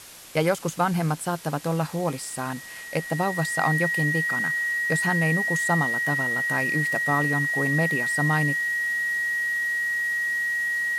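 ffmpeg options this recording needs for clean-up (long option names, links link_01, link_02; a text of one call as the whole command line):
ffmpeg -i in.wav -af "adeclick=threshold=4,bandreject=frequency=1900:width=30,afwtdn=0.0071" out.wav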